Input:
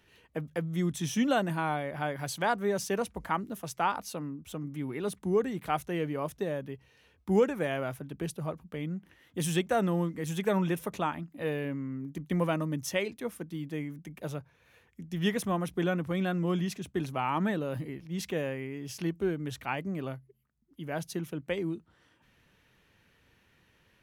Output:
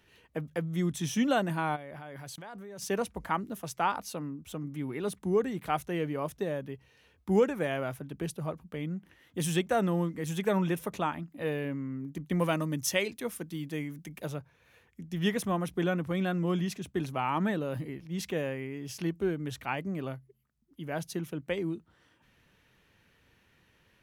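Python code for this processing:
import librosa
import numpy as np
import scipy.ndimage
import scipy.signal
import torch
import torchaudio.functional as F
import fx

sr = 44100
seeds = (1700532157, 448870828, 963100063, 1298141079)

y = fx.level_steps(x, sr, step_db=22, at=(1.75, 2.81), fade=0.02)
y = fx.high_shelf(y, sr, hz=2500.0, db=7.0, at=(12.4, 14.26))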